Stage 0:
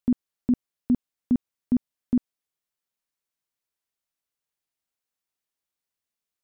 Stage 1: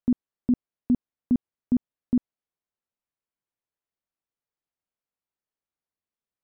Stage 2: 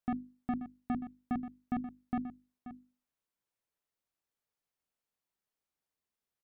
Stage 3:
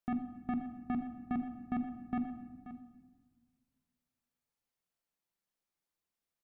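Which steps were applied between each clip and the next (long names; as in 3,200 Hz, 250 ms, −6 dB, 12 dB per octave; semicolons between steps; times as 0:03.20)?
low-pass filter 1,100 Hz 6 dB per octave
soft clipping −28 dBFS, distortion −10 dB; mains-hum notches 50/100/150/200/250/300/350 Hz; single-tap delay 532 ms −13 dB; level +1 dB
rectangular room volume 1,200 cubic metres, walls mixed, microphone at 0.79 metres; level −1.5 dB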